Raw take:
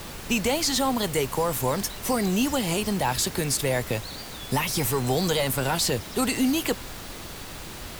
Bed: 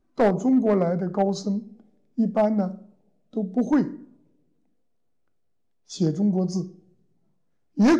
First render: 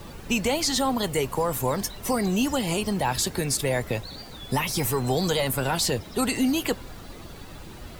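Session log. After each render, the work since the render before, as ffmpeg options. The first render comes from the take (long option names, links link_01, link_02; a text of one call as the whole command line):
ffmpeg -i in.wav -af "afftdn=noise_reduction=10:noise_floor=-39" out.wav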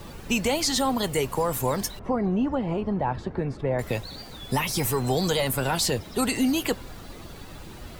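ffmpeg -i in.wav -filter_complex "[0:a]asettb=1/sr,asplit=3[link_01][link_02][link_03];[link_01]atrim=end=1.994[link_04];[link_02]atrim=start=1.99:end=3.79,asetpts=PTS-STARTPTS,afade=type=in:duration=0.004:curve=qsin,afade=type=out:start_time=1.796:duration=0.004:curve=qsin,lowpass=1200[link_05];[link_03]atrim=start=3.786[link_06];[link_04][link_05]acrossfade=duration=0.004:curve1=hsin:curve2=qsin[link_07];[link_07][link_06]acrossfade=duration=0.004:curve1=qsin:curve2=hsin" out.wav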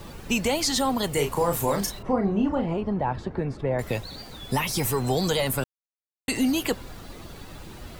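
ffmpeg -i in.wav -filter_complex "[0:a]asettb=1/sr,asplit=3[link_01][link_02][link_03];[link_01]atrim=end=1.134[link_04];[link_02]atrim=start=1.13:end=2.66,asetpts=PTS-STARTPTS,afade=type=in:duration=0.004:curve=qsin,afade=type=out:start_time=1.526:duration=0.004:curve=qsin,asplit=2[link_05][link_06];[link_06]adelay=35,volume=-5dB[link_07];[link_05][link_07]amix=inputs=2:normalize=0,atrim=end_sample=67473[link_08];[link_03]atrim=start=2.656[link_09];[link_04][link_08]acrossfade=duration=0.004:curve1=hsin:curve2=qsin[link_10];[link_10][link_09]acrossfade=duration=0.004:curve1=qsin:curve2=hsin,asplit=3[link_11][link_12][link_13];[link_11]atrim=end=5.64,asetpts=PTS-STARTPTS,afade=type=out:start_time=5.636:duration=0.004:curve=hsin[link_14];[link_12]atrim=start=5.64:end=6.28,asetpts=PTS-STARTPTS,volume=0[link_15];[link_13]atrim=start=6.28,asetpts=PTS-STARTPTS,afade=type=in:duration=0.004:curve=hsin[link_16];[link_14][link_15][link_16]concat=n=3:v=0:a=1" out.wav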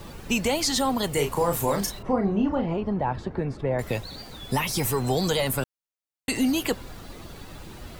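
ffmpeg -i in.wav -filter_complex "[0:a]asettb=1/sr,asplit=3[link_01][link_02][link_03];[link_01]atrim=end=2.364[link_04];[link_02]atrim=start=2.36:end=2.85,asetpts=PTS-STARTPTS,afade=type=in:duration=0.004:curve=qsin,afade=type=out:start_time=0.486:duration=0.004:curve=qsin,lowpass=frequency=6800:width=0.5412,lowpass=frequency=6800:width=1.3066[link_05];[link_03]atrim=start=2.846[link_06];[link_04][link_05]acrossfade=duration=0.004:curve1=hsin:curve2=qsin[link_07];[link_07][link_06]acrossfade=duration=0.004:curve1=qsin:curve2=hsin" out.wav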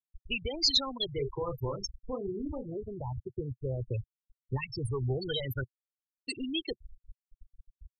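ffmpeg -i in.wav -af "afftfilt=real='re*gte(hypot(re,im),0.141)':imag='im*gte(hypot(re,im),0.141)':win_size=1024:overlap=0.75,firequalizer=gain_entry='entry(120,0);entry(190,-20);entry(360,-5);entry(740,-19);entry(1500,1);entry(2200,-12);entry(3500,10);entry(7300,-4)':delay=0.05:min_phase=1" out.wav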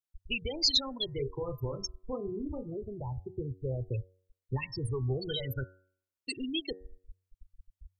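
ffmpeg -i in.wav -af "adynamicequalizer=threshold=0.00282:dfrequency=1200:dqfactor=0.89:tfrequency=1200:tqfactor=0.89:attack=5:release=100:ratio=0.375:range=3.5:mode=cutabove:tftype=bell,bandreject=frequency=93.21:width_type=h:width=4,bandreject=frequency=186.42:width_type=h:width=4,bandreject=frequency=279.63:width_type=h:width=4,bandreject=frequency=372.84:width_type=h:width=4,bandreject=frequency=466.05:width_type=h:width=4,bandreject=frequency=559.26:width_type=h:width=4,bandreject=frequency=652.47:width_type=h:width=4,bandreject=frequency=745.68:width_type=h:width=4,bandreject=frequency=838.89:width_type=h:width=4,bandreject=frequency=932.1:width_type=h:width=4,bandreject=frequency=1025.31:width_type=h:width=4,bandreject=frequency=1118.52:width_type=h:width=4,bandreject=frequency=1211.73:width_type=h:width=4,bandreject=frequency=1304.94:width_type=h:width=4,bandreject=frequency=1398.15:width_type=h:width=4,bandreject=frequency=1491.36:width_type=h:width=4,bandreject=frequency=1584.57:width_type=h:width=4,bandreject=frequency=1677.78:width_type=h:width=4,bandreject=frequency=1770.99:width_type=h:width=4,bandreject=frequency=1864.2:width_type=h:width=4" out.wav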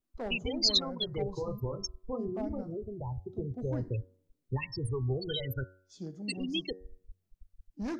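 ffmpeg -i in.wav -i bed.wav -filter_complex "[1:a]volume=-19dB[link_01];[0:a][link_01]amix=inputs=2:normalize=0" out.wav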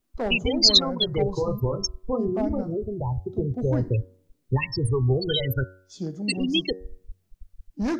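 ffmpeg -i in.wav -af "volume=10dB" out.wav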